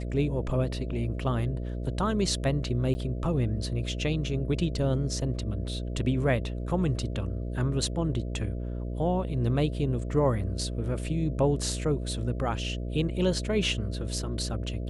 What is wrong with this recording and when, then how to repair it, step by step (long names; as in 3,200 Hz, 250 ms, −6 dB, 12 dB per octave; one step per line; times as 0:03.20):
mains buzz 60 Hz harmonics 11 −33 dBFS
0:02.94–0:02.95: drop-out 10 ms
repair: hum removal 60 Hz, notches 11
repair the gap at 0:02.94, 10 ms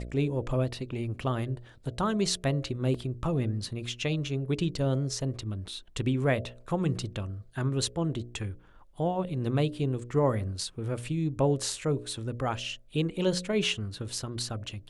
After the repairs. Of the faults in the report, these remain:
none of them is left